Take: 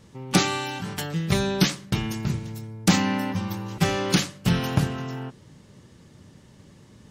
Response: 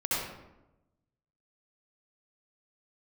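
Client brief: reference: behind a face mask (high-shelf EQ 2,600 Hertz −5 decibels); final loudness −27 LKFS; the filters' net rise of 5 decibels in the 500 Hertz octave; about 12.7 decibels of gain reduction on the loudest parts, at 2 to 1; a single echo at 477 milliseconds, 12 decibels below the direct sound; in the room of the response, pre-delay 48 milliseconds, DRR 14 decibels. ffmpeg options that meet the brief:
-filter_complex "[0:a]equalizer=frequency=500:width_type=o:gain=7,acompressor=threshold=-37dB:ratio=2,aecho=1:1:477:0.251,asplit=2[link_01][link_02];[1:a]atrim=start_sample=2205,adelay=48[link_03];[link_02][link_03]afir=irnorm=-1:irlink=0,volume=-23dB[link_04];[link_01][link_04]amix=inputs=2:normalize=0,highshelf=frequency=2600:gain=-5,volume=7.5dB"

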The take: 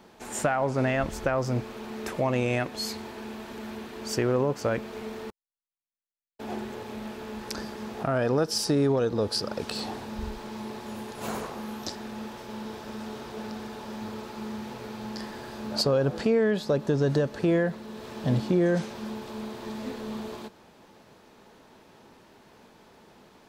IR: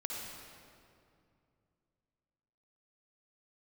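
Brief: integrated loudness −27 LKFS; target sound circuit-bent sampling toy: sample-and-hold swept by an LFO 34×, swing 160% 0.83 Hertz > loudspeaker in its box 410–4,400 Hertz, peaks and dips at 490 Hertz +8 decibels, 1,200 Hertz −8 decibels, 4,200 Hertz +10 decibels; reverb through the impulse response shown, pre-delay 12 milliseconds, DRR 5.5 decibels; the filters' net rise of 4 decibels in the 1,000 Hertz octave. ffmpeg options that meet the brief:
-filter_complex "[0:a]equalizer=frequency=1000:width_type=o:gain=7.5,asplit=2[link_01][link_02];[1:a]atrim=start_sample=2205,adelay=12[link_03];[link_02][link_03]afir=irnorm=-1:irlink=0,volume=-7dB[link_04];[link_01][link_04]amix=inputs=2:normalize=0,acrusher=samples=34:mix=1:aa=0.000001:lfo=1:lforange=54.4:lforate=0.83,highpass=410,equalizer=frequency=490:width_type=q:width=4:gain=8,equalizer=frequency=1200:width_type=q:width=4:gain=-8,equalizer=frequency=4200:width_type=q:width=4:gain=10,lowpass=frequency=4400:width=0.5412,lowpass=frequency=4400:width=1.3066"

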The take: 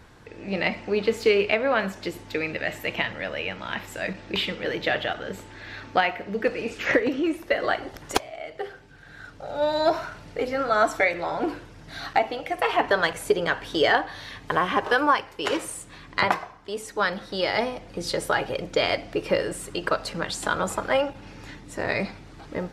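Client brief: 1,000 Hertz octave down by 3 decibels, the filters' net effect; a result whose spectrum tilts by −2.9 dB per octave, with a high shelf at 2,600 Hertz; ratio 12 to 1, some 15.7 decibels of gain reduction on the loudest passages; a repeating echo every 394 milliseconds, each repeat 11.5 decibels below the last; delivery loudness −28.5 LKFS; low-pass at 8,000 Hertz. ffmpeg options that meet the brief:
ffmpeg -i in.wav -af "lowpass=8000,equalizer=frequency=1000:width_type=o:gain=-5.5,highshelf=frequency=2600:gain=7.5,acompressor=threshold=-31dB:ratio=12,aecho=1:1:394|788|1182:0.266|0.0718|0.0194,volume=7dB" out.wav

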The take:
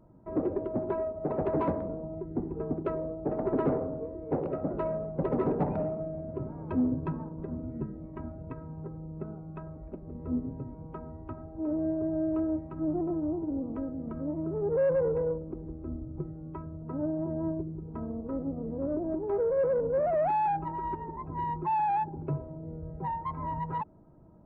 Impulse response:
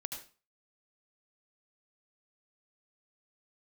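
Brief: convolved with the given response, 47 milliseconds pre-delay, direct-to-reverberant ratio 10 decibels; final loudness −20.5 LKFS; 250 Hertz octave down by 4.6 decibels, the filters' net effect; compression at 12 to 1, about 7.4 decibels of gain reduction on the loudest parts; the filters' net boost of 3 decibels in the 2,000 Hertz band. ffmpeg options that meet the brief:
-filter_complex "[0:a]equalizer=frequency=250:width_type=o:gain=-6.5,equalizer=frequency=2000:width_type=o:gain=4,acompressor=threshold=-32dB:ratio=12,asplit=2[link_01][link_02];[1:a]atrim=start_sample=2205,adelay=47[link_03];[link_02][link_03]afir=irnorm=-1:irlink=0,volume=-9dB[link_04];[link_01][link_04]amix=inputs=2:normalize=0,volume=17dB"

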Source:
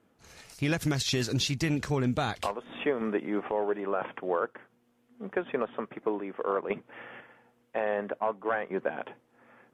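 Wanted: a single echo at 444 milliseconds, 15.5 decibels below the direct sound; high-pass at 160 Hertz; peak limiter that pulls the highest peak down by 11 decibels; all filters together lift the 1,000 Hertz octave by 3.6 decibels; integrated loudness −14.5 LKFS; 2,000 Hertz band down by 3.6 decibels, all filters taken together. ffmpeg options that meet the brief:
ffmpeg -i in.wav -af "highpass=160,equalizer=frequency=1000:width_type=o:gain=6.5,equalizer=frequency=2000:width_type=o:gain=-7.5,alimiter=limit=-24dB:level=0:latency=1,aecho=1:1:444:0.168,volume=21dB" out.wav

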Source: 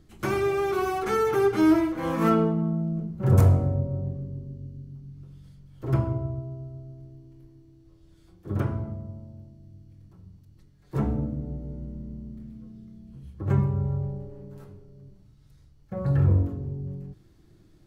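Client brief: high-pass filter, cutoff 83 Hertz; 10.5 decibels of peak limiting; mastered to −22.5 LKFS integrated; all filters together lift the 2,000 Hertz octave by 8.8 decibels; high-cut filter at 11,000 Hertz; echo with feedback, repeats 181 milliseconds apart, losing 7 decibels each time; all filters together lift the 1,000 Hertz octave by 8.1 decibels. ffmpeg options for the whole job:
ffmpeg -i in.wav -af "highpass=83,lowpass=11000,equalizer=frequency=1000:width_type=o:gain=8,equalizer=frequency=2000:width_type=o:gain=8.5,alimiter=limit=-15.5dB:level=0:latency=1,aecho=1:1:181|362|543|724|905:0.447|0.201|0.0905|0.0407|0.0183,volume=3.5dB" out.wav

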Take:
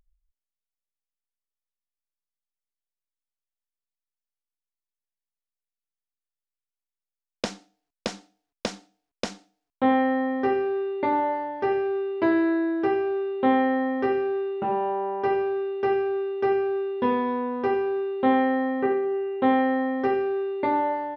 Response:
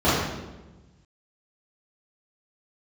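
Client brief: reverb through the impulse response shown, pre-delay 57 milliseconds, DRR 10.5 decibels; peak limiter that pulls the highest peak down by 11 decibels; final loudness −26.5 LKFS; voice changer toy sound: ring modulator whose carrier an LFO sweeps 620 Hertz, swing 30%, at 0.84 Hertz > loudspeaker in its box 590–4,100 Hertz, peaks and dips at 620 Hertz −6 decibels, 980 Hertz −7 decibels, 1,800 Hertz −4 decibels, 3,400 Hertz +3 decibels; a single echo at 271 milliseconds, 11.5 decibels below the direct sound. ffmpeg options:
-filter_complex "[0:a]alimiter=limit=-21dB:level=0:latency=1,aecho=1:1:271:0.266,asplit=2[link_01][link_02];[1:a]atrim=start_sample=2205,adelay=57[link_03];[link_02][link_03]afir=irnorm=-1:irlink=0,volume=-31.5dB[link_04];[link_01][link_04]amix=inputs=2:normalize=0,aeval=exprs='val(0)*sin(2*PI*620*n/s+620*0.3/0.84*sin(2*PI*0.84*n/s))':channel_layout=same,highpass=590,equalizer=frequency=620:width_type=q:width=4:gain=-6,equalizer=frequency=980:width_type=q:width=4:gain=-7,equalizer=frequency=1800:width_type=q:width=4:gain=-4,equalizer=frequency=3400:width_type=q:width=4:gain=3,lowpass=frequency=4100:width=0.5412,lowpass=frequency=4100:width=1.3066,volume=9dB"

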